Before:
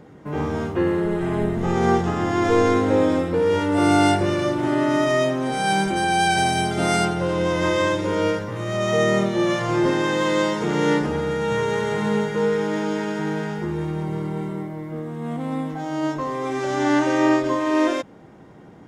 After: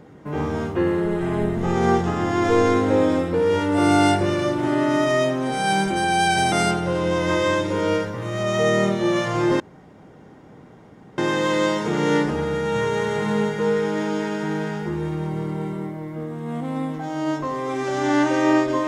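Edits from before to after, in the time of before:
0:06.52–0:06.86: remove
0:09.94: splice in room tone 1.58 s

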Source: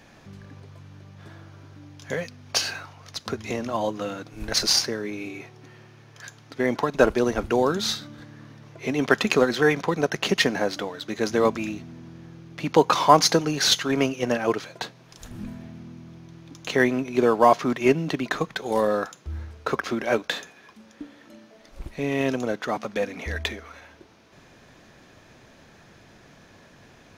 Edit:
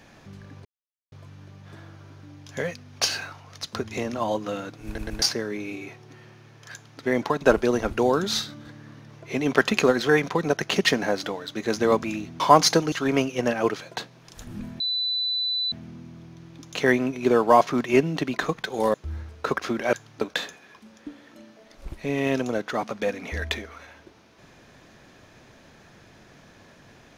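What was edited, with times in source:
0:00.65: splice in silence 0.47 s
0:04.39: stutter in place 0.12 s, 3 plays
0:06.25–0:06.53: duplicate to 0:20.15
0:11.93–0:12.99: remove
0:13.51–0:13.76: remove
0:15.64: insert tone 3,990 Hz −23 dBFS 0.92 s
0:18.86–0:19.16: remove

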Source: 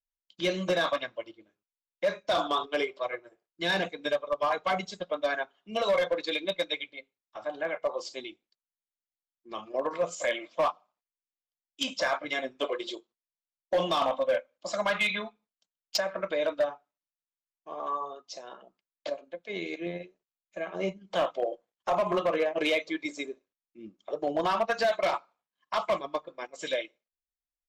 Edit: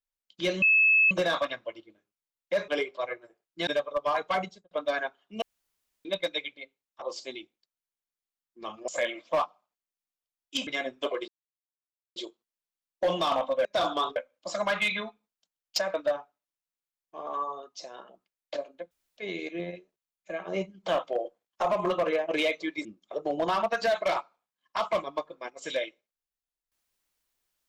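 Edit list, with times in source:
0:00.62: insert tone 2,600 Hz −17.5 dBFS 0.49 s
0:02.19–0:02.70: move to 0:14.35
0:03.69–0:04.03: remove
0:04.71–0:05.07: fade out and dull
0:05.78–0:06.41: fill with room tone
0:07.38–0:07.91: remove
0:09.77–0:10.14: remove
0:11.93–0:12.25: remove
0:12.86: splice in silence 0.88 s
0:16.13–0:16.47: remove
0:19.44: splice in room tone 0.26 s
0:23.12–0:23.82: remove

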